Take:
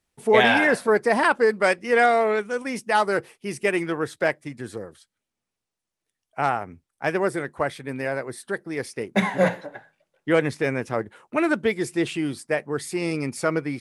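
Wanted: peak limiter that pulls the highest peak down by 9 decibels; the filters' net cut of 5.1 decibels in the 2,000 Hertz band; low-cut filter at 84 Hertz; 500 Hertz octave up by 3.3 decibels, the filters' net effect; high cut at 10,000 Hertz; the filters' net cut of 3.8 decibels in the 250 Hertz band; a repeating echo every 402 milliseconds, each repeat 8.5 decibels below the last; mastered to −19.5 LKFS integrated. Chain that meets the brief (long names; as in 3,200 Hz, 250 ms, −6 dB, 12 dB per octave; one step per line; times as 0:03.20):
high-pass filter 84 Hz
low-pass filter 10,000 Hz
parametric band 250 Hz −8.5 dB
parametric band 500 Hz +6.5 dB
parametric band 2,000 Hz −7 dB
brickwall limiter −12.5 dBFS
repeating echo 402 ms, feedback 38%, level −8.5 dB
level +5 dB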